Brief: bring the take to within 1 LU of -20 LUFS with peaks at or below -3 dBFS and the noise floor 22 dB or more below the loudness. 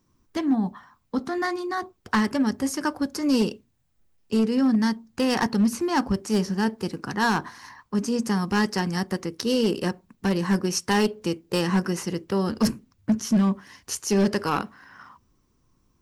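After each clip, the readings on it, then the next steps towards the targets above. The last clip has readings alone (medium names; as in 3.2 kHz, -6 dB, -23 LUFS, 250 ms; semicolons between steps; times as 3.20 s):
clipped samples 1.0%; clipping level -15.0 dBFS; loudness -25.0 LUFS; peak level -15.0 dBFS; loudness target -20.0 LUFS
-> clip repair -15 dBFS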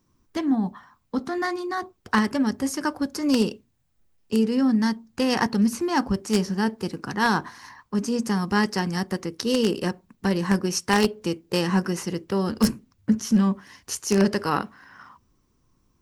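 clipped samples 0.0%; loudness -24.5 LUFS; peak level -6.0 dBFS; loudness target -20.0 LUFS
-> trim +4.5 dB; peak limiter -3 dBFS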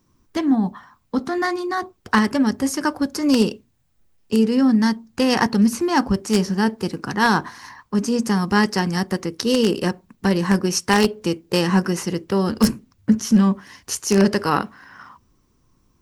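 loudness -20.5 LUFS; peak level -3.0 dBFS; noise floor -64 dBFS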